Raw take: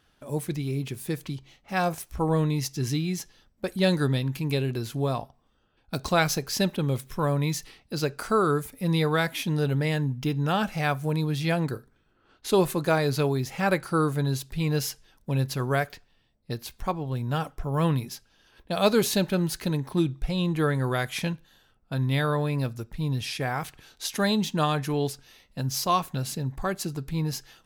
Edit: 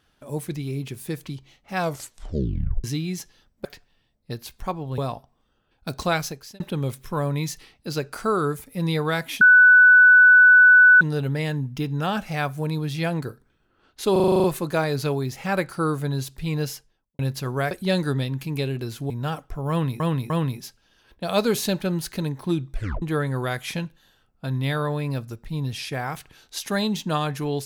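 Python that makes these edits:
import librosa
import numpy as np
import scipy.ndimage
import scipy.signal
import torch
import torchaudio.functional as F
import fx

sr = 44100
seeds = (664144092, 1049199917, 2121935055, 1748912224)

y = fx.studio_fade_out(x, sr, start_s=14.7, length_s=0.63)
y = fx.edit(y, sr, fx.tape_stop(start_s=1.8, length_s=1.04),
    fx.swap(start_s=3.65, length_s=1.39, other_s=15.85, other_length_s=1.33),
    fx.fade_out_span(start_s=6.14, length_s=0.52),
    fx.insert_tone(at_s=9.47, length_s=1.6, hz=1490.0, db=-8.5),
    fx.stutter(start_s=12.58, slice_s=0.04, count=9),
    fx.repeat(start_s=17.78, length_s=0.3, count=3),
    fx.tape_stop(start_s=20.22, length_s=0.28), tone=tone)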